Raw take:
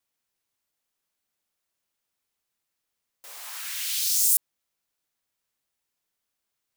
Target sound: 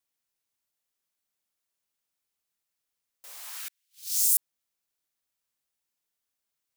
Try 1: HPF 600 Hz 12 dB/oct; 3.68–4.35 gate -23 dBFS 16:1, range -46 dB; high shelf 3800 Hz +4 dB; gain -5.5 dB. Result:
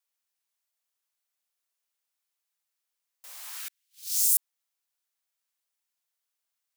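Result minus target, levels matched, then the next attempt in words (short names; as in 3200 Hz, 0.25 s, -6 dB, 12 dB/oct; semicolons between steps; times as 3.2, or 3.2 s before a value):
500 Hz band -3.0 dB
3.68–4.35 gate -23 dBFS 16:1, range -46 dB; high shelf 3800 Hz +4 dB; gain -5.5 dB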